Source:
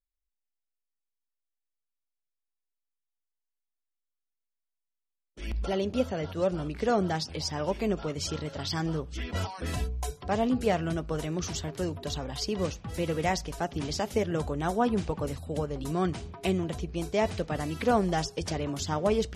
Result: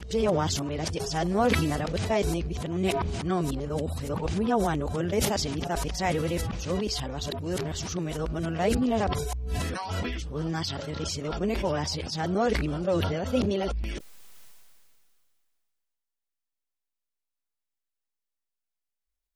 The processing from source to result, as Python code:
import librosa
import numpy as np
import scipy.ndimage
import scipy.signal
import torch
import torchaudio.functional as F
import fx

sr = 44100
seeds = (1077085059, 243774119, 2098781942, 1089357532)

y = x[::-1].copy()
y = fx.sustainer(y, sr, db_per_s=25.0)